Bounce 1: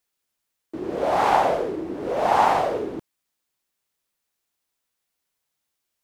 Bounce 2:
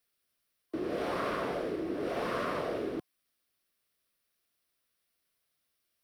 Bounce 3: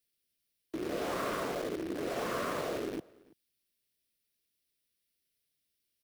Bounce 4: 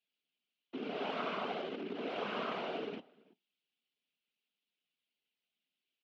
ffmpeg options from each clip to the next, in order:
ffmpeg -i in.wav -filter_complex "[0:a]afftfilt=real='re*lt(hypot(re,im),0.447)':imag='im*lt(hypot(re,im),0.447)':win_size=1024:overlap=0.75,superequalizer=9b=0.447:15b=0.398,acrossover=split=160|370|1200[link_01][link_02][link_03][link_04];[link_01]acompressor=threshold=-52dB:ratio=4[link_05];[link_02]acompressor=threshold=-39dB:ratio=4[link_06];[link_03]acompressor=threshold=-36dB:ratio=4[link_07];[link_04]acompressor=threshold=-42dB:ratio=4[link_08];[link_05][link_06][link_07][link_08]amix=inputs=4:normalize=0" out.wav
ffmpeg -i in.wav -filter_complex "[0:a]acrossover=split=550|1800[link_01][link_02][link_03];[link_02]acrusher=bits=6:mix=0:aa=0.000001[link_04];[link_01][link_04][link_03]amix=inputs=3:normalize=0,asplit=2[link_05][link_06];[link_06]adelay=332.4,volume=-24dB,highshelf=frequency=4000:gain=-7.48[link_07];[link_05][link_07]amix=inputs=2:normalize=0,volume=-1.5dB" out.wav
ffmpeg -i in.wav -af "flanger=delay=4:depth=2.3:regen=80:speed=1.3:shape=sinusoidal,afftfilt=real='hypot(re,im)*cos(2*PI*random(0))':imag='hypot(re,im)*sin(2*PI*random(1))':win_size=512:overlap=0.75,highpass=frequency=200:width=0.5412,highpass=frequency=200:width=1.3066,equalizer=frequency=330:width_type=q:width=4:gain=-9,equalizer=frequency=530:width_type=q:width=4:gain=-8,equalizer=frequency=1100:width_type=q:width=4:gain=-5,equalizer=frequency=1800:width_type=q:width=4:gain=-8,equalizer=frequency=2900:width_type=q:width=4:gain=5,lowpass=frequency=3500:width=0.5412,lowpass=frequency=3500:width=1.3066,volume=11dB" out.wav

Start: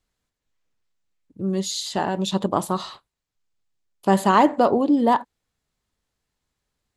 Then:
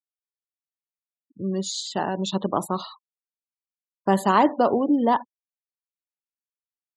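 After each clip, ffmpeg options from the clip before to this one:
ffmpeg -i in.wav -filter_complex "[0:a]afftfilt=real='re*gte(hypot(re,im),0.0178)':imag='im*gte(hypot(re,im),0.0178)':win_size=1024:overlap=0.75,acrossover=split=120|630|3400[link_01][link_02][link_03][link_04];[link_01]acompressor=threshold=-48dB:ratio=6[link_05];[link_05][link_02][link_03][link_04]amix=inputs=4:normalize=0,volume=-2dB" out.wav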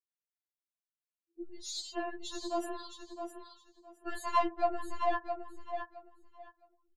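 ffmpeg -i in.wav -af "aeval=exprs='0.562*(cos(1*acos(clip(val(0)/0.562,-1,1)))-cos(1*PI/2))+0.0158*(cos(8*acos(clip(val(0)/0.562,-1,1)))-cos(8*PI/2))':channel_layout=same,aecho=1:1:664|1328|1992:0.422|0.0843|0.0169,afftfilt=real='re*4*eq(mod(b,16),0)':imag='im*4*eq(mod(b,16),0)':win_size=2048:overlap=0.75,volume=-7.5dB" out.wav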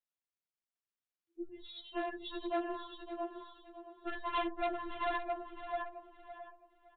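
ffmpeg -i in.wav -af "aresample=8000,asoftclip=type=hard:threshold=-31.5dB,aresample=44100,aecho=1:1:562|1124|1686:0.237|0.0545|0.0125,volume=1dB" -ar 48000 -c:a libopus -b:a 96k out.opus

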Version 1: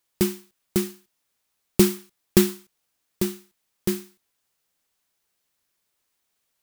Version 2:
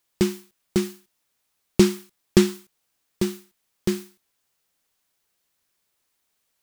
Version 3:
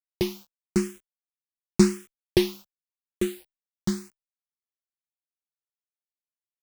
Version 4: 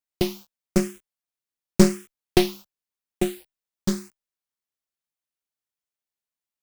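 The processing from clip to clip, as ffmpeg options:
ffmpeg -i in.wav -filter_complex "[0:a]acrossover=split=8000[link_01][link_02];[link_02]acompressor=threshold=-42dB:ratio=4:attack=1:release=60[link_03];[link_01][link_03]amix=inputs=2:normalize=0,volume=1.5dB" out.wav
ffmpeg -i in.wav -filter_complex "[0:a]acrusher=bits=7:mix=0:aa=0.000001,asplit=2[link_01][link_02];[link_02]afreqshift=0.91[link_03];[link_01][link_03]amix=inputs=2:normalize=1" out.wav
ffmpeg -i in.wav -af "aeval=exprs='0.631*(cos(1*acos(clip(val(0)/0.631,-1,1)))-cos(1*PI/2))+0.112*(cos(4*acos(clip(val(0)/0.631,-1,1)))-cos(4*PI/2))+0.02*(cos(8*acos(clip(val(0)/0.631,-1,1)))-cos(8*PI/2))':channel_layout=same,acrusher=bits=5:mode=log:mix=0:aa=0.000001,volume=2dB" out.wav

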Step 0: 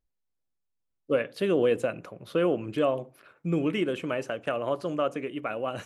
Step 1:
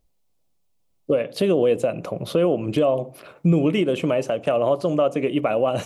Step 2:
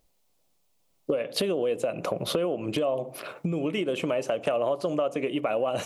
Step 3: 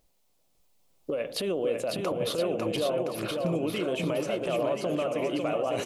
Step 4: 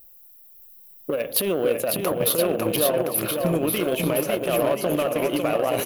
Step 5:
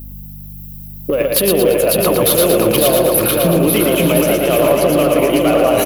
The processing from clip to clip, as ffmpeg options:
ffmpeg -i in.wav -filter_complex "[0:a]equalizer=frequency=160:width_type=o:width=0.67:gain=4,equalizer=frequency=630:width_type=o:width=0.67:gain=5,equalizer=frequency=1600:width_type=o:width=0.67:gain=-9,asplit=2[link_01][link_02];[link_02]acompressor=threshold=-32dB:ratio=6,volume=2dB[link_03];[link_01][link_03]amix=inputs=2:normalize=0,alimiter=limit=-17dB:level=0:latency=1:release=281,volume=6.5dB" out.wav
ffmpeg -i in.wav -af "acompressor=threshold=-28dB:ratio=6,lowshelf=frequency=240:gain=-9.5,volume=6dB" out.wav
ffmpeg -i in.wav -filter_complex "[0:a]alimiter=limit=-21.5dB:level=0:latency=1:release=70,asplit=2[link_01][link_02];[link_02]aecho=0:1:550|1018|1415|1753|2040:0.631|0.398|0.251|0.158|0.1[link_03];[link_01][link_03]amix=inputs=2:normalize=0" out.wav
ffmpeg -i in.wav -filter_complex "[0:a]asplit=2[link_01][link_02];[link_02]acrusher=bits=3:mix=0:aa=0.5,volume=-10dB[link_03];[link_01][link_03]amix=inputs=2:normalize=0,aexciter=amount=13.6:drive=6.1:freq=11000,volume=4dB" out.wav
ffmpeg -i in.wav -filter_complex "[0:a]asplit=2[link_01][link_02];[link_02]aeval=exprs='0.531*sin(PI/2*3.16*val(0)/0.531)':channel_layout=same,volume=-7.5dB[link_03];[link_01][link_03]amix=inputs=2:normalize=0,aeval=exprs='val(0)+0.0282*(sin(2*PI*50*n/s)+sin(2*PI*2*50*n/s)/2+sin(2*PI*3*50*n/s)/3+sin(2*PI*4*50*n/s)/4+sin(2*PI*5*50*n/s)/5)':channel_layout=same,aecho=1:1:114|228|342|456|570|684:0.668|0.321|0.154|0.0739|0.0355|0.017" out.wav

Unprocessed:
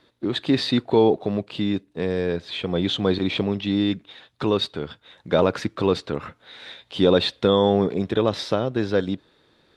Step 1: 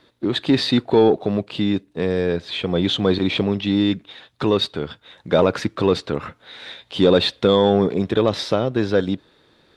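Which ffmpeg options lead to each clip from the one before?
ffmpeg -i in.wav -af "acontrast=42,volume=-2dB" out.wav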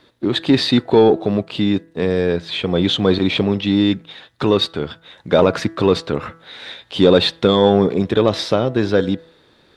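ffmpeg -i in.wav -af "bandreject=frequency=164.9:width_type=h:width=4,bandreject=frequency=329.8:width_type=h:width=4,bandreject=frequency=494.7:width_type=h:width=4,bandreject=frequency=659.6:width_type=h:width=4,bandreject=frequency=824.5:width_type=h:width=4,bandreject=frequency=989.4:width_type=h:width=4,bandreject=frequency=1154.3:width_type=h:width=4,bandreject=frequency=1319.2:width_type=h:width=4,bandreject=frequency=1484.1:width_type=h:width=4,bandreject=frequency=1649:width_type=h:width=4,bandreject=frequency=1813.9:width_type=h:width=4,bandreject=frequency=1978.8:width_type=h:width=4,volume=3dB" out.wav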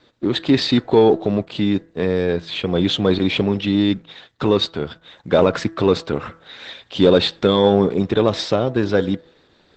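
ffmpeg -i in.wav -af "volume=-1dB" -ar 48000 -c:a libopus -b:a 12k out.opus

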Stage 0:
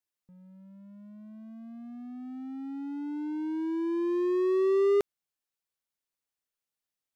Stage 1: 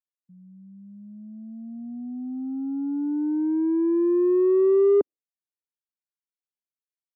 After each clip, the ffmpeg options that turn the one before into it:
ffmpeg -i in.wav -filter_complex "[0:a]afftdn=noise_reduction=23:noise_floor=-45,equalizer=frequency=290:width=1.1:gain=9,acrossover=split=150|340|1400[link_01][link_02][link_03][link_04];[link_04]acompressor=threshold=-60dB:ratio=6[link_05];[link_01][link_02][link_03][link_05]amix=inputs=4:normalize=0" out.wav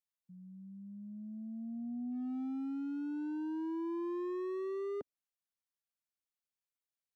ffmpeg -i in.wav -af "equalizer=frequency=360:width=2.6:gain=-12,alimiter=level_in=7dB:limit=-24dB:level=0:latency=1,volume=-7dB,asoftclip=type=hard:threshold=-33.5dB,volume=-2.5dB" out.wav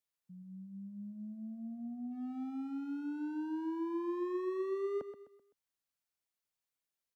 ffmpeg -i in.wav -filter_complex "[0:a]acrossover=split=320|900[link_01][link_02][link_03];[link_01]alimiter=level_in=22dB:limit=-24dB:level=0:latency=1,volume=-22dB[link_04];[link_04][link_02][link_03]amix=inputs=3:normalize=0,aecho=1:1:128|256|384|512:0.282|0.11|0.0429|0.0167,volume=2dB" out.wav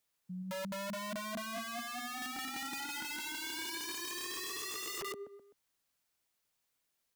ffmpeg -i in.wav -af "aeval=exprs='(mod(188*val(0)+1,2)-1)/188':channel_layout=same,volume=9dB" out.wav

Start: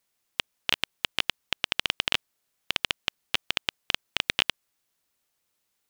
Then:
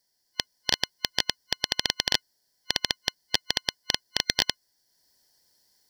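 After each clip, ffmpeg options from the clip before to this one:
ffmpeg -i in.wav -af "superequalizer=10b=0.251:12b=0.251:13b=0.708:14b=3.16,dynaudnorm=framelen=260:gausssize=3:maxgain=8.5dB" out.wav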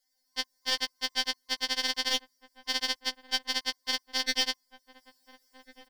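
ffmpeg -i in.wav -filter_complex "[0:a]asplit=2[link_01][link_02];[link_02]adelay=1399,volume=-16dB,highshelf=frequency=4000:gain=-31.5[link_03];[link_01][link_03]amix=inputs=2:normalize=0,afftfilt=real='re*3.46*eq(mod(b,12),0)':imag='im*3.46*eq(mod(b,12),0)':win_size=2048:overlap=0.75" out.wav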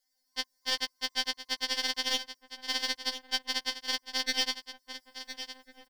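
ffmpeg -i in.wav -af "aecho=1:1:1011:0.266,volume=-1.5dB" out.wav

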